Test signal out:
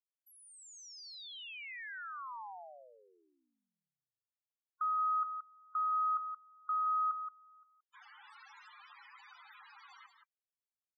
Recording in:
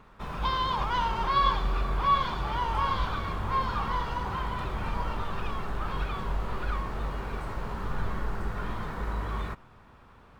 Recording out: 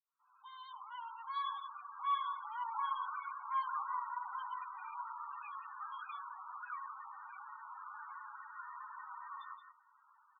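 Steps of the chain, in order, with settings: opening faded in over 3.21 s; HPF 860 Hz 24 dB/oct; echo 0.174 s -8 dB; loudest bins only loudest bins 16; gain -6.5 dB

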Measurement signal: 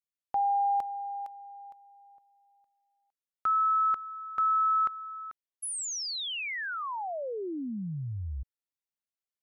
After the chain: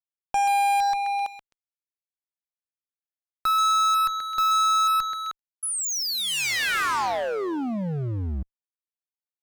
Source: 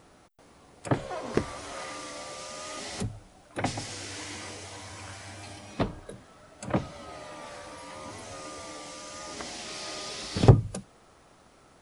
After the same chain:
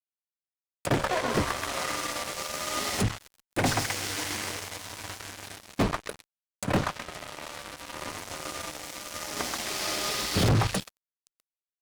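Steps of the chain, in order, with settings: delay with a stepping band-pass 0.13 s, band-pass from 1300 Hz, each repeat 0.7 oct, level -1 dB; fuzz box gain 32 dB, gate -39 dBFS; gain -6.5 dB

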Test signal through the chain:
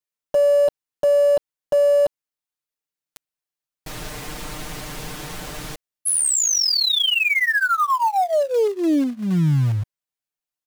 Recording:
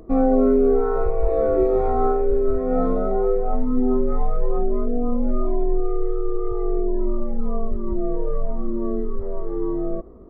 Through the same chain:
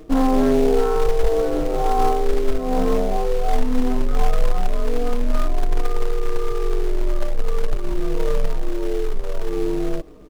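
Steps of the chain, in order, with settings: comb 6.6 ms, depth 94%; in parallel at -4.5 dB: companded quantiser 4-bit; on the sum: Doppler distortion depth 0.31 ms; gain -5.5 dB

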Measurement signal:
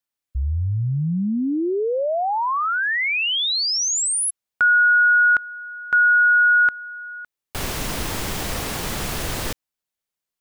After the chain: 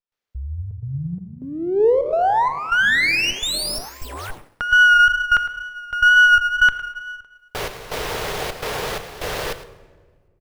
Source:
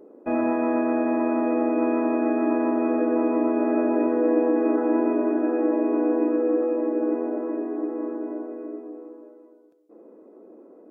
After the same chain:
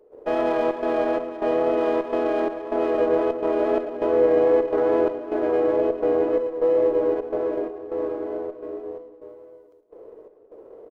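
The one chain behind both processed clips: dynamic EQ 1500 Hz, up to +5 dB, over -27 dBFS, Q 0.78; wow and flutter 21 cents; in parallel at -2 dB: compressor, threshold -21 dBFS; on the sum: step gate ".xxxxx.xxx." 127 bpm -12 dB; resonant low shelf 350 Hz -6.5 dB, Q 3; on a send: echo 0.108 s -15 dB; on the sum: shoebox room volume 1500 m³, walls mixed, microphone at 0.46 m; running maximum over 5 samples; gain -2.5 dB

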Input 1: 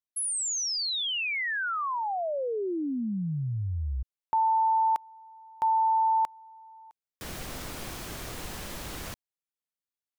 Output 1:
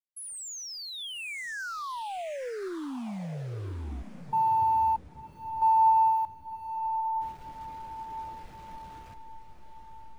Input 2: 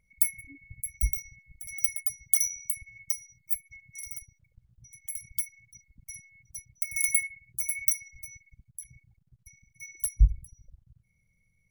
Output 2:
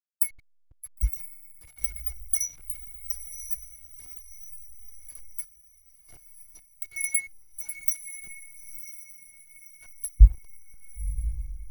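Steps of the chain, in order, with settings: level-crossing sampler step -34 dBFS; diffused feedback echo 1.025 s, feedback 55%, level -6 dB; spectral expander 1.5:1

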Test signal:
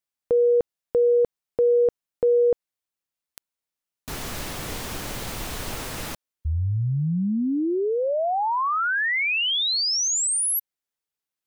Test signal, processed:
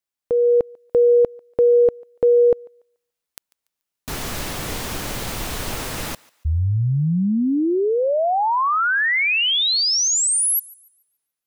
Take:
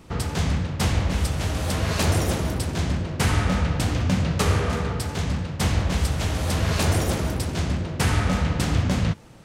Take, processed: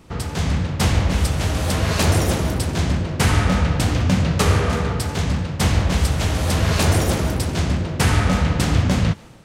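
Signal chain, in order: AGC gain up to 4.5 dB; on a send: thinning echo 0.144 s, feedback 32%, high-pass 620 Hz, level -23 dB

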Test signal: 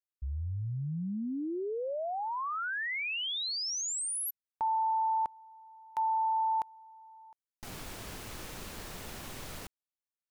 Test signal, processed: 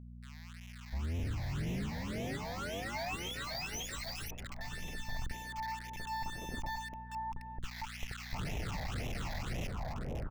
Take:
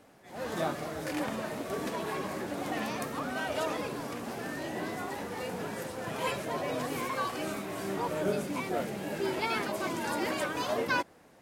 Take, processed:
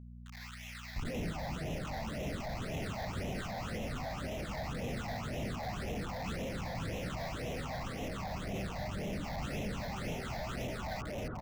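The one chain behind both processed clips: minimum comb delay 1.5 ms; reverse; compressor 20:1, threshold -44 dBFS; reverse; notch 2200 Hz, Q 22; on a send: echo with dull and thin repeats by turns 0.265 s, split 1700 Hz, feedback 67%, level -4 dB; on the sum: Schmitt trigger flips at -49 dBFS; high shelf 5700 Hz -9 dB; bands offset in time highs, lows 0.7 s, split 1300 Hz; phaser stages 8, 1.9 Hz, lowest notch 370–1400 Hz; buzz 60 Hz, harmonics 4, -61 dBFS -5 dB/oct; gain +11.5 dB

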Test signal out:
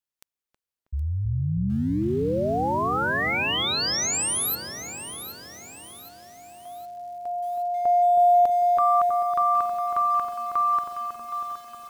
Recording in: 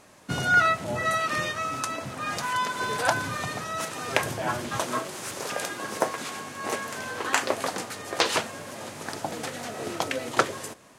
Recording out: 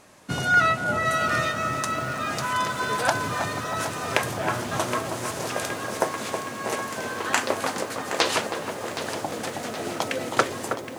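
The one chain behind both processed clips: on a send: darkening echo 0.32 s, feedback 76%, low-pass 1100 Hz, level -5 dB; on the sum: lo-fi delay 0.769 s, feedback 55%, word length 7-bit, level -11 dB; gain +1 dB

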